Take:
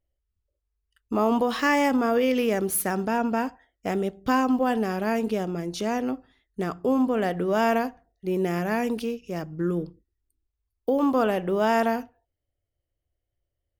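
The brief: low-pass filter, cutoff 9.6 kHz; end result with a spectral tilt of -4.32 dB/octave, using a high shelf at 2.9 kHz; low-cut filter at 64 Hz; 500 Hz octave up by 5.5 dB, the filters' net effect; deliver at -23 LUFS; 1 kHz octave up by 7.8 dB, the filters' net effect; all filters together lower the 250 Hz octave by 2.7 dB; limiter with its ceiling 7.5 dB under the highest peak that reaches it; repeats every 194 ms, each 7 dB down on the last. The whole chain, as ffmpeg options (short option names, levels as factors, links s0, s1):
-af "highpass=64,lowpass=9600,equalizer=f=250:t=o:g=-5,equalizer=f=500:t=o:g=5.5,equalizer=f=1000:t=o:g=7.5,highshelf=f=2900:g=7.5,alimiter=limit=0.266:level=0:latency=1,aecho=1:1:194|388|582|776|970:0.447|0.201|0.0905|0.0407|0.0183,volume=0.944"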